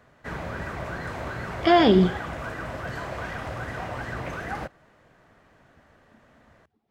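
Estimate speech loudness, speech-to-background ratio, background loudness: −20.0 LKFS, 13.5 dB, −33.5 LKFS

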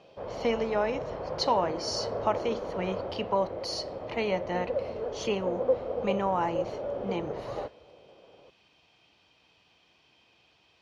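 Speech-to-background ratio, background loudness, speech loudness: 3.0 dB, −35.0 LKFS, −32.0 LKFS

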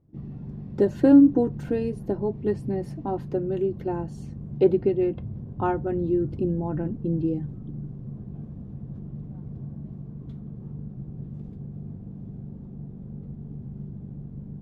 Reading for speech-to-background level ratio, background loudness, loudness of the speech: 13.5 dB, −38.0 LKFS, −24.5 LKFS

